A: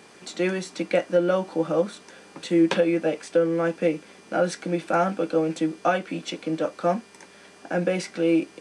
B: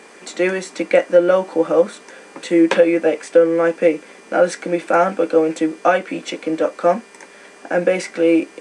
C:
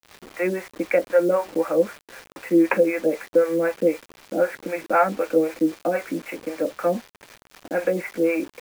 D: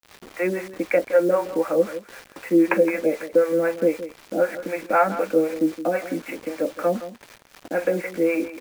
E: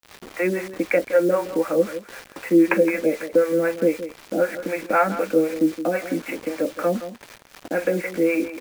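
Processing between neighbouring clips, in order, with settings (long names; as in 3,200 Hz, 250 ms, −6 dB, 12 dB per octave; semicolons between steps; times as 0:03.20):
octave-band graphic EQ 125/250/500/1,000/2,000/8,000 Hz −8/+6/+8/+5/+9/+8 dB; level −1 dB
Butterworth low-pass 2,600 Hz 96 dB per octave; two-band tremolo in antiphase 3.9 Hz, depth 100%, crossover 520 Hz; bit reduction 7 bits
single-tap delay 167 ms −13.5 dB
dynamic equaliser 770 Hz, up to −5 dB, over −30 dBFS, Q 0.9; level +3 dB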